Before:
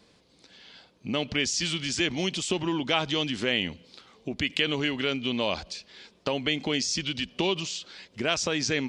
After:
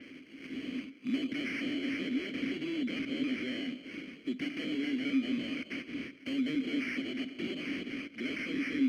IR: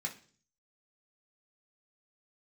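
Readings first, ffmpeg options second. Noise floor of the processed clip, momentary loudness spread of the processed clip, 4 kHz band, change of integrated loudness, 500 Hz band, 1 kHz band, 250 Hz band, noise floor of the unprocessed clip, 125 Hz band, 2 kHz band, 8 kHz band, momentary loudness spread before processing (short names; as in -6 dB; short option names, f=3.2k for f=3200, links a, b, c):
-53 dBFS, 8 LU, -14.0 dB, -7.5 dB, -12.5 dB, -18.5 dB, -0.5 dB, -61 dBFS, -14.5 dB, -7.5 dB, under -20 dB, 10 LU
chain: -filter_complex "[0:a]aexciter=amount=1.8:drive=9.5:freq=3.1k,asplit=2[a][b];[b]highpass=f=720:p=1,volume=33dB,asoftclip=type=tanh:threshold=-9dB[c];[a][c]amix=inputs=2:normalize=0,lowpass=f=1.8k:p=1,volume=-6dB,highshelf=f=3.6k:g=10.5,bandreject=f=3.8k:w=23,acrusher=samples=12:mix=1:aa=0.000001,asplit=3[d][e][f];[d]bandpass=f=270:t=q:w=8,volume=0dB[g];[e]bandpass=f=2.29k:t=q:w=8,volume=-6dB[h];[f]bandpass=f=3.01k:t=q:w=8,volume=-9dB[i];[g][h][i]amix=inputs=3:normalize=0,adynamicequalizer=threshold=0.002:dfrequency=6500:dqfactor=0.7:tfrequency=6500:tqfactor=0.7:attack=5:release=100:ratio=0.375:range=3:mode=cutabove:tftype=highshelf,volume=-5.5dB"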